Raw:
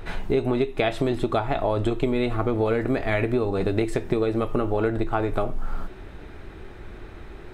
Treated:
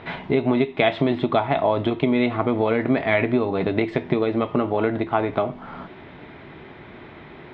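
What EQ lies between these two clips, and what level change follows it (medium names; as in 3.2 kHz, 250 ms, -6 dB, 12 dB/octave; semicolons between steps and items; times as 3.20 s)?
cabinet simulation 120–4200 Hz, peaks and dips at 150 Hz +8 dB, 250 Hz +6 dB, 650 Hz +5 dB, 980 Hz +7 dB, 2.1 kHz +8 dB, 3.3 kHz +6 dB; 0.0 dB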